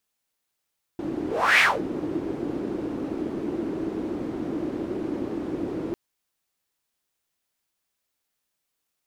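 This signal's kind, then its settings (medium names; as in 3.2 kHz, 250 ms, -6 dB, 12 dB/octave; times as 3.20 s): whoosh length 4.95 s, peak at 0.61 s, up 0.36 s, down 0.23 s, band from 320 Hz, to 2.2 kHz, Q 4.5, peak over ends 12.5 dB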